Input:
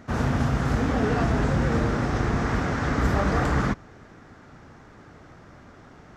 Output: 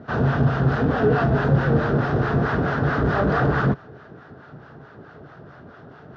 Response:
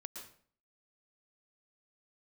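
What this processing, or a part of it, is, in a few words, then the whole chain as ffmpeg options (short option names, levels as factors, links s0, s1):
guitar amplifier with harmonic tremolo: -filter_complex "[0:a]acrossover=split=700[s0][s1];[s0]aeval=exprs='val(0)*(1-0.7/2+0.7/2*cos(2*PI*4.6*n/s))':c=same[s2];[s1]aeval=exprs='val(0)*(1-0.7/2-0.7/2*cos(2*PI*4.6*n/s))':c=same[s3];[s2][s3]amix=inputs=2:normalize=0,asoftclip=type=tanh:threshold=0.119,highpass=79,equalizer=f=140:t=q:w=4:g=8,equalizer=f=420:t=q:w=4:g=7,equalizer=f=660:t=q:w=4:g=5,equalizer=f=1500:t=q:w=4:g=6,equalizer=f=2200:t=q:w=4:g=-9,lowpass=f=4200:w=0.5412,lowpass=f=4200:w=1.3066,volume=1.88"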